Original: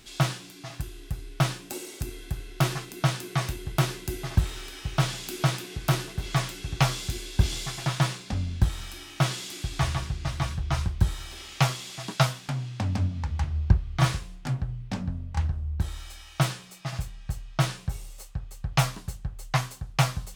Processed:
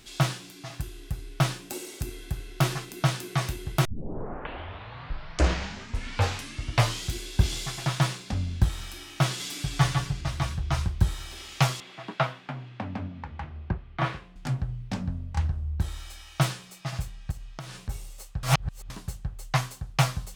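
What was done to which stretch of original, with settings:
3.85 s: tape start 3.36 s
9.39–10.21 s: comb 6.9 ms, depth 89%
11.80–14.36 s: three-band isolator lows -13 dB, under 180 Hz, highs -23 dB, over 3.1 kHz
17.31–17.89 s: compression 10:1, threshold -35 dBFS
18.43–18.90 s: reverse

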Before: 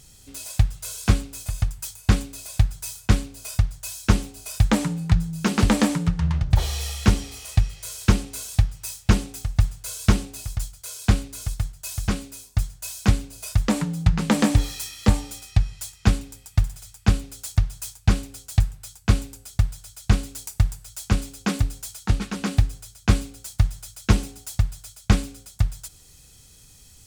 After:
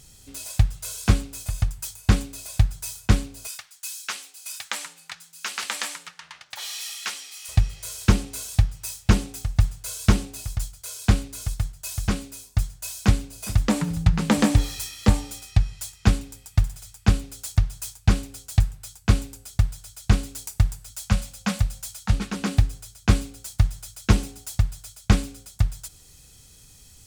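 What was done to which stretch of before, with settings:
3.47–7.49 s: high-pass 1.5 kHz
13.03–13.63 s: echo throw 410 ms, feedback 45%, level -15.5 dB
20.90–22.13 s: elliptic band-stop 240–490 Hz

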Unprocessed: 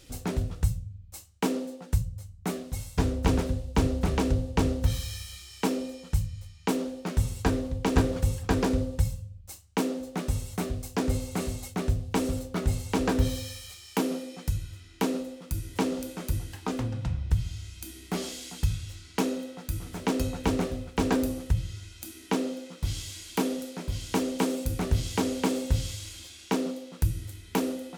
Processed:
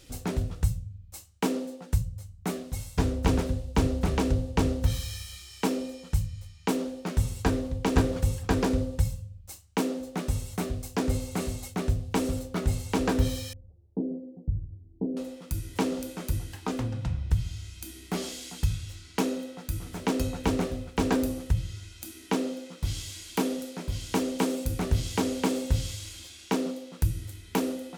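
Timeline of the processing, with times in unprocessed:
13.53–15.17 s: Gaussian low-pass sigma 18 samples

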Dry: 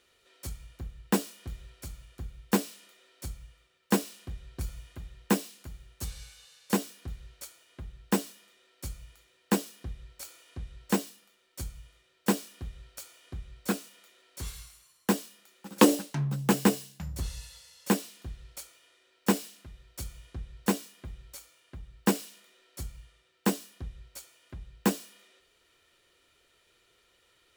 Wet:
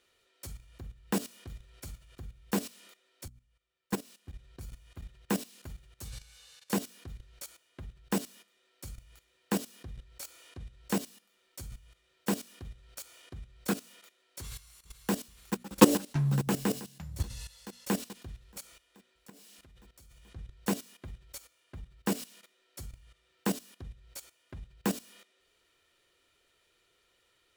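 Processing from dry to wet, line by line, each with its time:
3.28–5.62 s: fade in, from -20 dB
14.42–15.13 s: echo throw 430 ms, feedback 75%, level -8.5 dB
18.60–20.36 s: compression, threshold -47 dBFS
whole clip: hum notches 60/120/180/240 Hz; dynamic bell 110 Hz, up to +6 dB, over -49 dBFS, Q 2.2; level held to a coarse grid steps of 15 dB; trim +3.5 dB

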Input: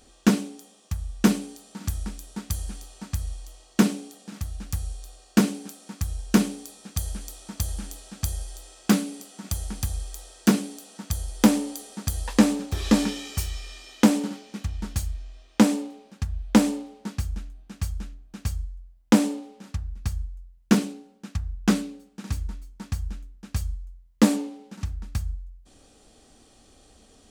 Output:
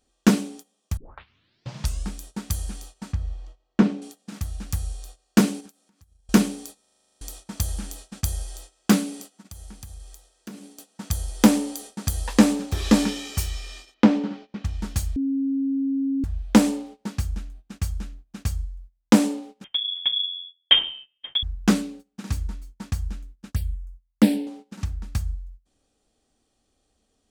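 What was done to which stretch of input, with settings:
0.97 s: tape start 1.15 s
3.13–4.02 s: tape spacing loss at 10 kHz 27 dB
5.60–6.29 s: compression 8:1, threshold -44 dBFS
6.81 s: stutter in place 0.04 s, 10 plays
9.35–10.78 s: compression 4:1, threshold -41 dBFS
13.94–14.65 s: distance through air 230 m
15.16–16.24 s: bleep 272 Hz -23 dBFS
19.64–21.43 s: frequency inversion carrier 3.4 kHz
23.52–24.47 s: touch-sensitive phaser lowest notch 330 Hz, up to 1.2 kHz, full sweep at -23 dBFS
whole clip: gate -43 dBFS, range -18 dB; trim +2 dB

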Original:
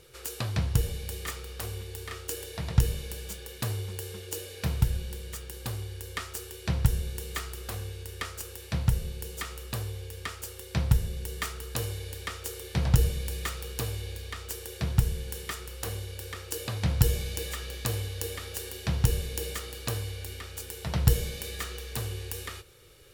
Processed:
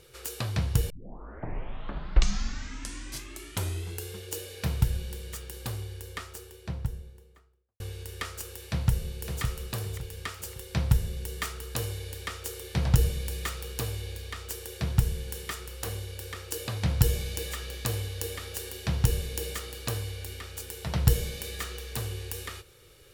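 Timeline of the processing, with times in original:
0.90 s: tape start 3.27 s
5.59–7.80 s: studio fade out
8.68–9.41 s: echo throw 560 ms, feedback 35%, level -6.5 dB

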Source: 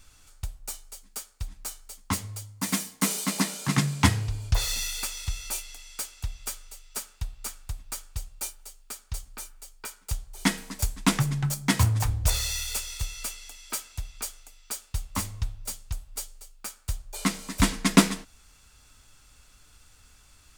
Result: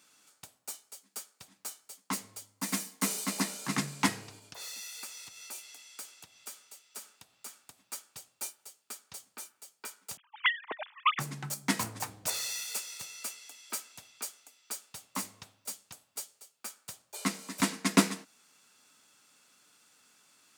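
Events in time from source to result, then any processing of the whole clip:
4.39–7.93 s: compression 2:1, threshold -38 dBFS
10.17–11.19 s: formants replaced by sine waves
whole clip: high-pass 190 Hz 24 dB/octave; dynamic bell 3.3 kHz, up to -4 dB, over -51 dBFS, Q 6.1; trim -4.5 dB

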